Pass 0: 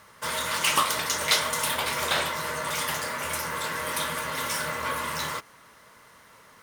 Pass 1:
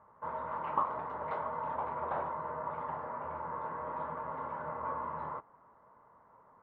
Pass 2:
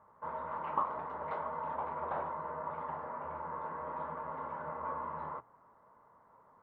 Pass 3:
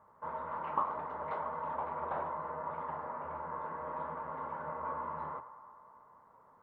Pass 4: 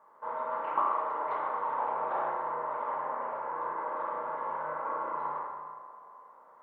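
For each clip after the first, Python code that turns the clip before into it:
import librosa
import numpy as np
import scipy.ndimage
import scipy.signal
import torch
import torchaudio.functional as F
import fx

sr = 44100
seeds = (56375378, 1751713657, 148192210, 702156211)

y1 = fx.ladder_lowpass(x, sr, hz=1100.0, resonance_pct=50)
y2 = fx.hum_notches(y1, sr, base_hz=60, count=2)
y2 = y2 * librosa.db_to_amplitude(-1.5)
y3 = fx.echo_banded(y2, sr, ms=105, feedback_pct=78, hz=1000.0, wet_db=-13.0)
y4 = scipy.signal.sosfilt(scipy.signal.butter(2, 370.0, 'highpass', fs=sr, output='sos'), y3)
y4 = fx.rev_spring(y4, sr, rt60_s=1.5, pass_ms=(33, 39), chirp_ms=45, drr_db=-2.0)
y4 = y4 * librosa.db_to_amplitude(2.0)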